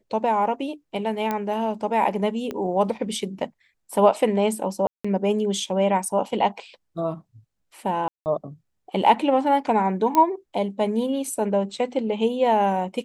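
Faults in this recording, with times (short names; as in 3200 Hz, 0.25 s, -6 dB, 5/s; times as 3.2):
1.31 pop -12 dBFS
2.51 pop -17 dBFS
4.87–5.04 gap 0.175 s
8.08–8.26 gap 0.179 s
10.15 pop -9 dBFS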